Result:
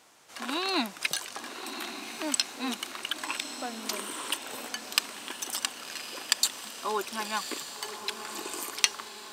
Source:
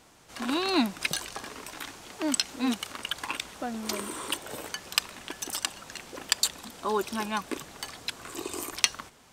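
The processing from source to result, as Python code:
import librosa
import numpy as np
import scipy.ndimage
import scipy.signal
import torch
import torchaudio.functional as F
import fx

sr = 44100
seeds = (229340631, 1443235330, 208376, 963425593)

p1 = fx.highpass(x, sr, hz=540.0, slope=6)
y = p1 + fx.echo_diffused(p1, sr, ms=1110, feedback_pct=54, wet_db=-9.5, dry=0)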